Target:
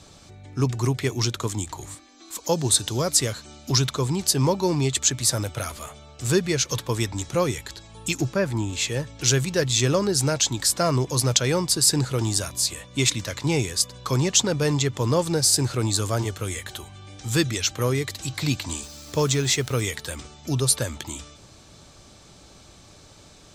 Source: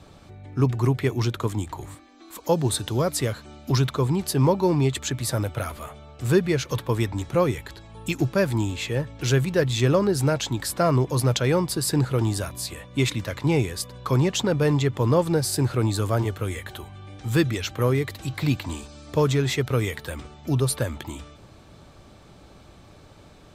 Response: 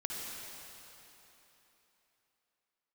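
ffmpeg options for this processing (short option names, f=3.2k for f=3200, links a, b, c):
-filter_complex "[0:a]asettb=1/sr,asplit=3[a][b][c];[a]atrim=end=8.214[d];[b]atrim=start=8.21:end=8.73,asetpts=PTS-STARTPTS,afade=t=in:d=0.004:c=qsin,afade=t=out:st=0.516:d=0.004:c=qsin,acrossover=split=2500[e][f];[f]acompressor=threshold=-50dB:ratio=4:attack=1:release=60[g];[e][g]amix=inputs=2:normalize=0[h];[c]atrim=start=8.726[i];[d][h]acrossfade=d=0.004:c1=hsin:c2=qsin[j];[j][i]acrossfade=d=0.004:c1=qsin:c2=hsin,equalizer=f=6.5k:w=0.71:g=14,asettb=1/sr,asplit=3[k][l][m];[k]atrim=end=18.834[n];[l]atrim=start=18.83:end=19.81,asetpts=PTS-STARTPTS,afade=t=in:d=0.004:c=qsin,afade=t=out:st=0.976:d=0.004:c=qsin,acrusher=bits=8:dc=4:mix=0:aa=0.000001[o];[m]atrim=start=19.806[p];[n][o]acrossfade=d=0.004:c1=hsin:c2=qsin[q];[q][p]acrossfade=d=0.004:c1=qsin:c2=hsin,volume=-2dB"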